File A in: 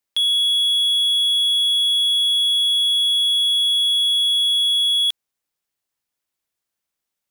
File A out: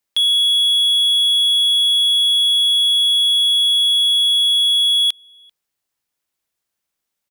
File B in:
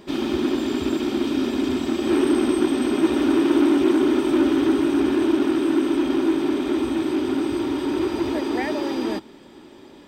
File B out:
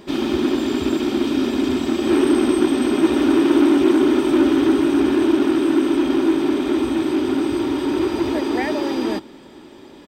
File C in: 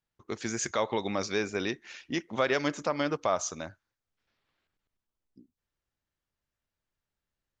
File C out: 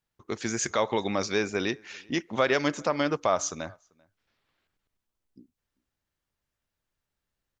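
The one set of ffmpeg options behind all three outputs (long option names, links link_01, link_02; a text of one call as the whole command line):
ffmpeg -i in.wav -filter_complex "[0:a]asplit=2[link_01][link_02];[link_02]adelay=390.7,volume=-28dB,highshelf=frequency=4000:gain=-8.79[link_03];[link_01][link_03]amix=inputs=2:normalize=0,volume=3dB" out.wav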